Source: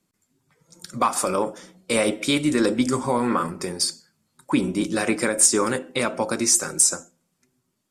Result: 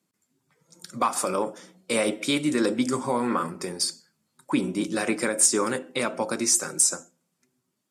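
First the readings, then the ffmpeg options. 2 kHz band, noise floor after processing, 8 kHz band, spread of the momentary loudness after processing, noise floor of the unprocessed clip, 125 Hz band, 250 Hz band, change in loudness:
-3.0 dB, -78 dBFS, -3.0 dB, 9 LU, -74 dBFS, -5.0 dB, -3.5 dB, -3.0 dB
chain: -af "highpass=130,volume=-3dB"

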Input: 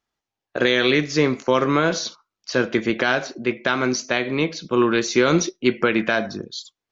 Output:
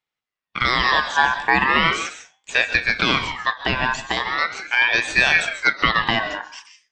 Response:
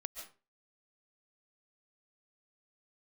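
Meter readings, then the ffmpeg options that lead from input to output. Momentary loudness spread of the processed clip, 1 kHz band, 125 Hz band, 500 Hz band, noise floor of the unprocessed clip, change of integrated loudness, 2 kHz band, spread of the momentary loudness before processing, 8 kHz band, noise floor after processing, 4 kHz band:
8 LU, +5.5 dB, -4.5 dB, -10.0 dB, under -85 dBFS, +2.0 dB, +6.5 dB, 11 LU, n/a, under -85 dBFS, +4.0 dB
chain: -filter_complex "[0:a]dynaudnorm=f=120:g=11:m=11.5dB,asplit=2[a][b];[1:a]atrim=start_sample=2205,lowpass=4.3k[c];[b][c]afir=irnorm=-1:irlink=0,volume=5.5dB[d];[a][d]amix=inputs=2:normalize=0,aeval=exprs='val(0)*sin(2*PI*1700*n/s+1700*0.25/0.39*sin(2*PI*0.39*n/s))':c=same,volume=-7.5dB"

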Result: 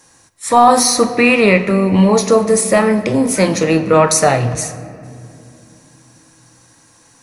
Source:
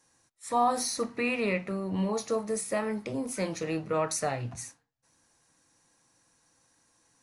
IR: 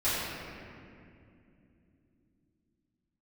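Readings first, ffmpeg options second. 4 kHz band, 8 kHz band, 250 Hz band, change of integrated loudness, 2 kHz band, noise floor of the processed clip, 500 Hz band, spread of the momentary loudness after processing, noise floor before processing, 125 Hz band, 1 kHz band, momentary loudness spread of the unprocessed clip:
+18.0 dB, +18.0 dB, +18.5 dB, +18.0 dB, +18.0 dB, -50 dBFS, +18.0 dB, 8 LU, -72 dBFS, +19.0 dB, +17.0 dB, 8 LU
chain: -filter_complex "[0:a]asplit=2[a][b];[1:a]atrim=start_sample=2205,adelay=31[c];[b][c]afir=irnorm=-1:irlink=0,volume=-23.5dB[d];[a][d]amix=inputs=2:normalize=0,apsyclip=19.5dB,volume=-1.5dB"

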